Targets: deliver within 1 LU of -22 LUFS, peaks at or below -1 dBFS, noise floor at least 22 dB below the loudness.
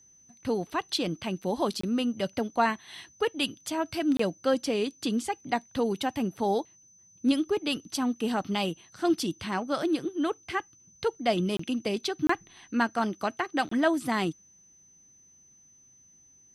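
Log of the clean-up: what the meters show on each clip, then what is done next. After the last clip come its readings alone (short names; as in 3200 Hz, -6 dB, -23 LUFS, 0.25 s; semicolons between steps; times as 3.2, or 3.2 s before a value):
dropouts 5; longest dropout 24 ms; steady tone 6100 Hz; tone level -56 dBFS; loudness -29.5 LUFS; peak -12.5 dBFS; loudness target -22.0 LUFS
-> interpolate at 1.81/4.17/11.57/12.27/13.69, 24 ms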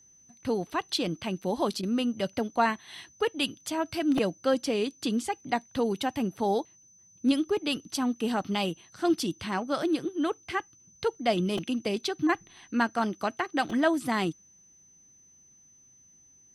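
dropouts 0; steady tone 6100 Hz; tone level -56 dBFS
-> notch 6100 Hz, Q 30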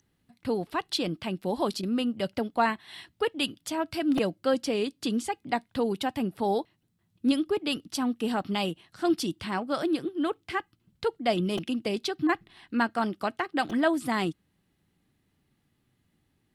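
steady tone none; loudness -29.5 LUFS; peak -12.5 dBFS; loudness target -22.0 LUFS
-> gain +7.5 dB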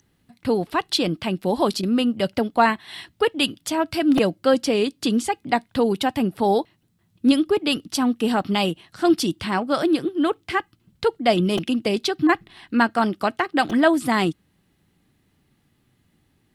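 loudness -22.0 LUFS; peak -5.0 dBFS; noise floor -66 dBFS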